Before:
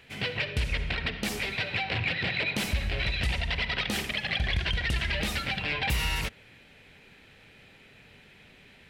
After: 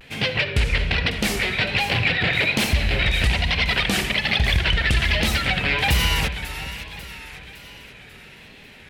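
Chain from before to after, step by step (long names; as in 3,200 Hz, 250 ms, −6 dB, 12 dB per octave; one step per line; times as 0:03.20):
echo with a time of its own for lows and highs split 990 Hz, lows 379 ms, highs 549 ms, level −11.5 dB
pitch vibrato 1.2 Hz 90 cents
level +8.5 dB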